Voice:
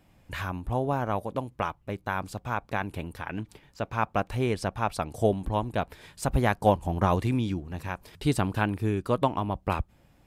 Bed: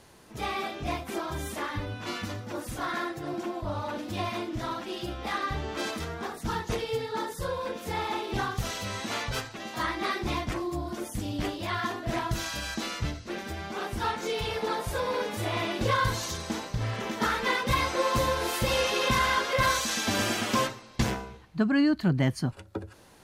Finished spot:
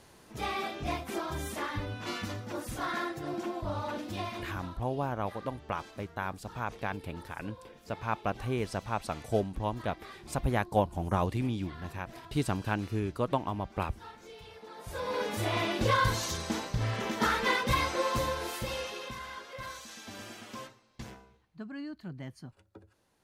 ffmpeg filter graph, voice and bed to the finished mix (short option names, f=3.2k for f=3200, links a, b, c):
-filter_complex "[0:a]adelay=4100,volume=-5dB[a];[1:a]volume=16dB,afade=t=out:st=3.95:d=0.84:silence=0.149624,afade=t=in:st=14.74:d=0.59:silence=0.125893,afade=t=out:st=17.44:d=1.71:silence=0.141254[b];[a][b]amix=inputs=2:normalize=0"